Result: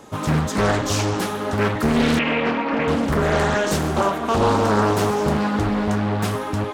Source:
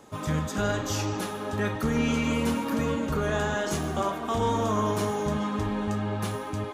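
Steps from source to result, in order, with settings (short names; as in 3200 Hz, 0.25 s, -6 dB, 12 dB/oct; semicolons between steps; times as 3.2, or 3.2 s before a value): 2.19–2.88 speaker cabinet 220–3700 Hz, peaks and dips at 240 Hz -4 dB, 740 Hz +5 dB, 2100 Hz +9 dB, 3100 Hz -9 dB; Doppler distortion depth 0.77 ms; gain +8 dB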